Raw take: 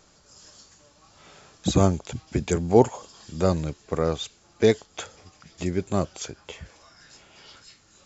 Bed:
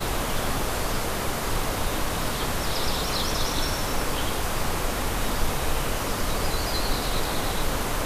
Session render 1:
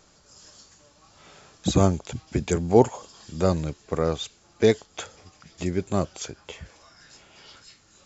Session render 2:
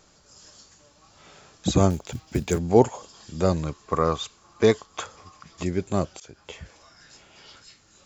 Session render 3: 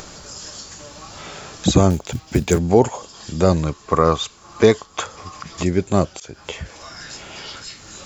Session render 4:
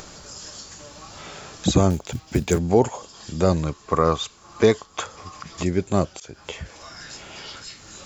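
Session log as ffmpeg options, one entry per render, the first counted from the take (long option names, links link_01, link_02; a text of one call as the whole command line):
ffmpeg -i in.wav -af anull out.wav
ffmpeg -i in.wav -filter_complex "[0:a]asettb=1/sr,asplit=3[link_01][link_02][link_03];[link_01]atrim=end=1.904[link_04];[link_02]atrim=start=1.9:end=2.59,asetpts=PTS-STARTPTS,afade=type=in:duration=0.004:curve=qsin,afade=type=out:start_time=0.686:duration=0.004:curve=qsin,acrusher=bits=6:mode=log:mix=0:aa=0.000001[link_05];[link_03]atrim=start=2.586[link_06];[link_04][link_05]acrossfade=duration=0.004:curve1=hsin:curve2=qsin[link_07];[link_07][link_06]acrossfade=duration=0.004:curve1=qsin:curve2=hsin,asettb=1/sr,asplit=3[link_08][link_09][link_10];[link_08]atrim=end=3.624[link_11];[link_09]atrim=start=3.62:end=5.63,asetpts=PTS-STARTPTS,afade=type=in:duration=0.004:curve=qsin,afade=type=out:start_time=2.006:duration=0.004:curve=qsin,equalizer=frequency=1100:width=3.9:gain=13.5[link_12];[link_10]atrim=start=5.626[link_13];[link_11][link_12]acrossfade=duration=0.004:curve1=hsin:curve2=qsin[link_14];[link_14][link_13]acrossfade=duration=0.004:curve1=qsin:curve2=hsin,asplit=2[link_15][link_16];[link_15]atrim=end=6.2,asetpts=PTS-STARTPTS,afade=type=out:start_time=6.196:duration=0.004:curve=hsin:silence=0.0707946[link_17];[link_16]atrim=start=6.2,asetpts=PTS-STARTPTS,afade=type=in:duration=0.41:curve=qsin:silence=0.0707946[link_18];[link_17][link_18]concat=n=2:v=0:a=1" out.wav
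ffmpeg -i in.wav -filter_complex "[0:a]asplit=2[link_01][link_02];[link_02]acompressor=mode=upward:threshold=-28dB:ratio=2.5,volume=2.5dB[link_03];[link_01][link_03]amix=inputs=2:normalize=0,alimiter=level_in=0dB:limit=-1dB:release=50:level=0:latency=1" out.wav
ffmpeg -i in.wav -af "volume=-3.5dB" out.wav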